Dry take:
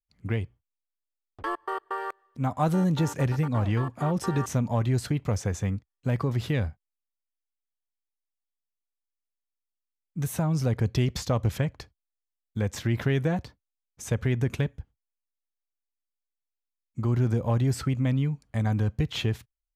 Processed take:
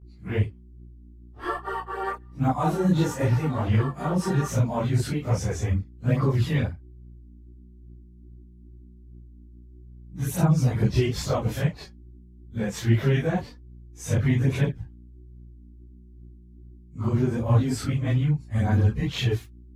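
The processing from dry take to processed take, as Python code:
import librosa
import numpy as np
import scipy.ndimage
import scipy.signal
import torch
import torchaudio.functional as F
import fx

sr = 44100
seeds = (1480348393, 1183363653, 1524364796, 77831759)

y = fx.phase_scramble(x, sr, seeds[0], window_ms=100)
y = fx.dmg_buzz(y, sr, base_hz=60.0, harmonics=6, level_db=-51.0, tilt_db=-6, odd_only=False)
y = fx.chorus_voices(y, sr, voices=2, hz=1.2, base_ms=18, depth_ms=3.0, mix_pct=65)
y = y * librosa.db_to_amplitude(5.0)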